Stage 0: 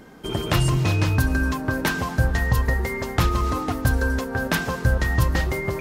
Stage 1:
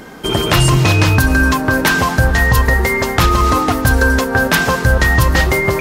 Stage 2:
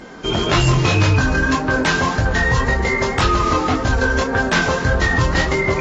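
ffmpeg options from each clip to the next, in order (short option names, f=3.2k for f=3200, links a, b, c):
-af "lowshelf=f=460:g=-5.5,acontrast=68,alimiter=level_in=8.5dB:limit=-1dB:release=50:level=0:latency=1,volume=-1dB"
-af "flanger=delay=20:depth=5.3:speed=1.8,asoftclip=type=tanh:threshold=-8dB" -ar 32000 -c:a aac -b:a 24k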